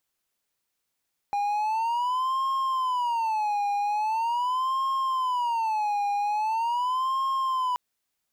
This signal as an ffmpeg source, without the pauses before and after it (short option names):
-f lavfi -i "aevalsrc='0.0841*(1-4*abs(mod((941.5*t-128.5/(2*PI*0.42)*sin(2*PI*0.42*t))+0.25,1)-0.5))':d=6.43:s=44100"